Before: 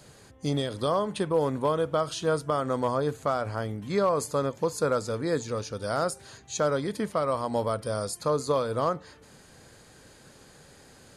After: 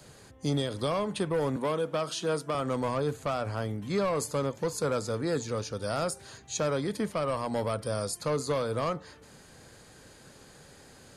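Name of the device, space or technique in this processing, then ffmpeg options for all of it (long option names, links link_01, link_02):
one-band saturation: -filter_complex "[0:a]acrossover=split=240|2700[link_01][link_02][link_03];[link_02]asoftclip=type=tanh:threshold=-25dB[link_04];[link_01][link_04][link_03]amix=inputs=3:normalize=0,asettb=1/sr,asplit=3[link_05][link_06][link_07];[link_05]atrim=end=1.564[link_08];[link_06]atrim=start=1.56:end=2.55,asetpts=PTS-STARTPTS,afade=type=in:duration=0.004:curve=qsin,afade=type=out:start_time=0.986:duration=0.004:curve=qsin,highpass=frequency=160:width=0.5412,highpass=frequency=160:width=1.3066[link_09];[link_07]atrim=start=2.546[link_10];[link_08][link_09]acrossfade=duration=0.004:curve1=hsin:curve2=qsin[link_11];[link_11][link_10]acrossfade=duration=0.004:curve1=qsin:curve2=hsin"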